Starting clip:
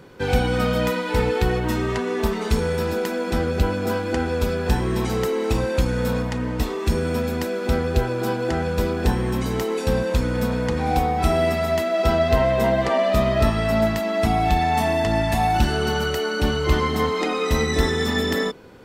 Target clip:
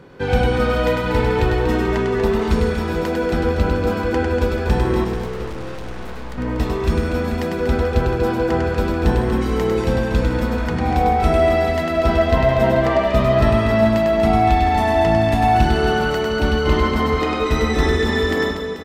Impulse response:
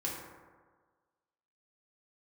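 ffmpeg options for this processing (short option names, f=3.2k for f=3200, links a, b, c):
-filter_complex "[0:a]highshelf=f=5.2k:g=-11.5,asettb=1/sr,asplit=3[a][b][c];[a]atrim=end=5.044[d];[b]atrim=start=5.04:end=6.38,asetpts=PTS-STARTPTS,afade=t=in:d=0.004:c=qsin,afade=t=out:st=1.336:d=0.004:c=qsin,aeval=exprs='(tanh(50.1*val(0)+0.6)-tanh(0.6))/50.1':c=same[e];[c]atrim=start=6.376[f];[d][e]acrossfade=d=0.004:c1=hsin:c2=qsin[g];[g][f]acrossfade=d=0.004:c1=qsin:c2=hsin,asplit=2[h][i];[i]aecho=0:1:100|240|436|710.4|1095:0.631|0.398|0.251|0.158|0.1[j];[h][j]amix=inputs=2:normalize=0,volume=2dB"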